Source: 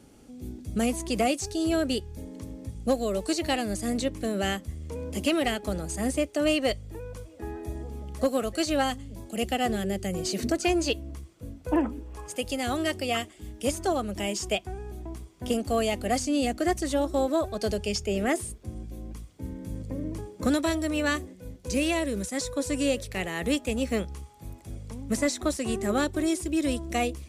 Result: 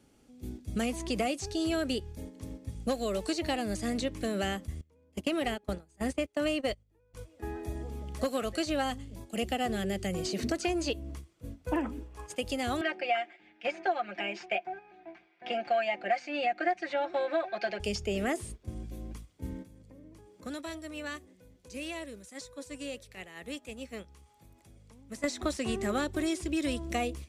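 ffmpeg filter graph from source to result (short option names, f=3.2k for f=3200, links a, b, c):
-filter_complex "[0:a]asettb=1/sr,asplit=3[a][b][c];[a]atrim=end=4.814[d];[b]atrim=start=4.81:end=7.14,asetpts=PTS-STARTPTS,afade=t=in:d=0.004:c=qsin,afade=t=out:st=2.326:d=0.004:c=qsin,agate=range=-20dB:threshold=-30dB:ratio=16:release=100:detection=peak,highshelf=f=4.4k:g=-5[e];[c]atrim=start=7.136[f];[d][e]acrossfade=d=0.004:c1=hsin:c2=qsin[g];[g][f]acrossfade=d=0.004:c1=qsin:c2=hsin,asettb=1/sr,asplit=3[h][i][j];[h]atrim=end=12.814[k];[i]atrim=start=12.81:end=17.8,asetpts=PTS-STARTPTS,afade=t=in:d=0.004:c=qsin,afade=t=out:st=4.986:d=0.004:c=qsin,highpass=460,equalizer=f=480:t=q:w=4:g=-7,equalizer=f=730:t=q:w=4:g=8,equalizer=f=1.1k:t=q:w=4:g=-7,equalizer=f=1.6k:t=q:w=4:g=9,equalizer=f=2.3k:t=q:w=4:g=10,equalizer=f=3.3k:t=q:w=4:g=-5,lowpass=f=3.7k:w=0.5412,lowpass=f=3.7k:w=1.3066,aecho=1:1:5.7:0.8,atrim=end_sample=220059[l];[j]atrim=start=17.796[m];[k][l]acrossfade=d=0.004:c1=hsin:c2=qsin[n];[n][m]acrossfade=d=0.004:c1=qsin:c2=hsin,asettb=1/sr,asplit=3[o][p][q];[o]atrim=end=19.624[r];[p]atrim=start=19.62:end=25.24,asetpts=PTS-STARTPTS,afade=t=in:d=0.004:c=qsin,afade=t=out:st=5.616:d=0.004:c=qsin,acompressor=threshold=-43dB:ratio=2:attack=3.2:release=140:knee=1:detection=peak,lowshelf=f=220:g=-3.5[s];[q]atrim=start=25.236[t];[r][s]acrossfade=d=0.004:c1=hsin:c2=qsin[u];[u][t]acrossfade=d=0.004:c1=qsin:c2=hsin,agate=range=-8dB:threshold=-39dB:ratio=16:detection=peak,equalizer=f=2.5k:t=o:w=2.5:g=3.5,acrossover=split=1100|6400[v][w][x];[v]acompressor=threshold=-26dB:ratio=4[y];[w]acompressor=threshold=-35dB:ratio=4[z];[x]acompressor=threshold=-48dB:ratio=4[aa];[y][z][aa]amix=inputs=3:normalize=0,volume=-2dB"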